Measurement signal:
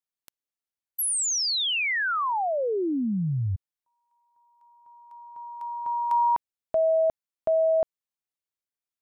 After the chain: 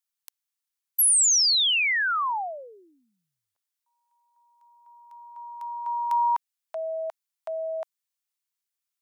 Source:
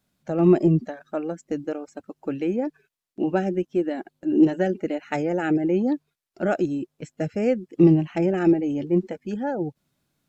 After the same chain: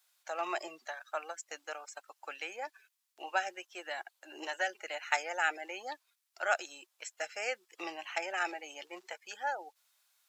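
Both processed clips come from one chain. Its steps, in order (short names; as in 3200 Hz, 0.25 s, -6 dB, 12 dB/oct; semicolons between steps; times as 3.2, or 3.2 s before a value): HPF 830 Hz 24 dB/oct; high shelf 3000 Hz +7.5 dB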